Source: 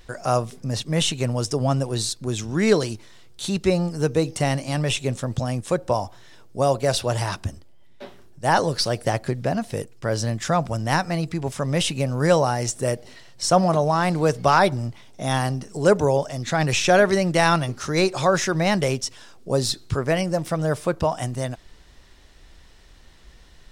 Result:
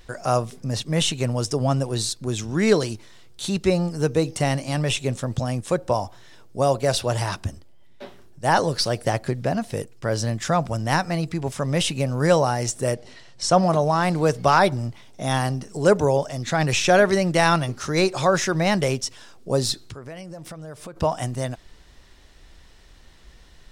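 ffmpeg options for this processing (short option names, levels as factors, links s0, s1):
-filter_complex "[0:a]asettb=1/sr,asplit=3[s0][s1][s2];[s0]atrim=end=12.944[s3];[s1]atrim=start=12.94:end=13.64,asetpts=PTS-STARTPTS,afade=t=in:d=0.004:c=qsin,afade=t=out:st=0.696:d=0.004:c=qsin,lowpass=8700[s4];[s2]atrim=start=13.636[s5];[s3][s4]acrossfade=d=0.004:c1=hsin:c2=qsin[s6];[s6][s5]acrossfade=d=0.004:c1=qsin:c2=hsin,asplit=3[s7][s8][s9];[s7]afade=t=out:st=19.85:d=0.02[s10];[s8]acompressor=threshold=0.0178:ratio=6:attack=3.2:release=140:knee=1:detection=peak,afade=t=in:st=19.85:d=0.02,afade=t=out:st=20.95:d=0.02[s11];[s9]afade=t=in:st=20.95:d=0.02[s12];[s10][s11][s12]amix=inputs=3:normalize=0"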